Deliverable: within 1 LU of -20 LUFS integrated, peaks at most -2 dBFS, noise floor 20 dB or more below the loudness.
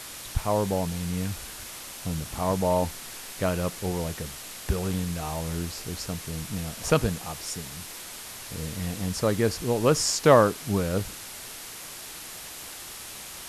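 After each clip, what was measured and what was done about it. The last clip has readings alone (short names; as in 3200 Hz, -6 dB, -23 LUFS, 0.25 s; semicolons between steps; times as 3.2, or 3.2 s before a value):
noise floor -41 dBFS; noise floor target -49 dBFS; loudness -28.5 LUFS; peak -5.5 dBFS; loudness target -20.0 LUFS
-> noise print and reduce 8 dB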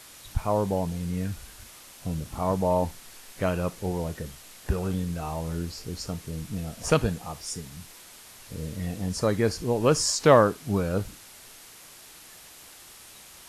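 noise floor -49 dBFS; loudness -27.5 LUFS; peak -5.0 dBFS; loudness target -20.0 LUFS
-> gain +7.5 dB; limiter -2 dBFS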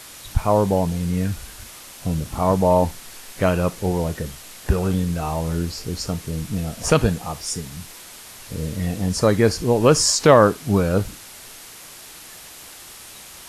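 loudness -20.5 LUFS; peak -2.0 dBFS; noise floor -41 dBFS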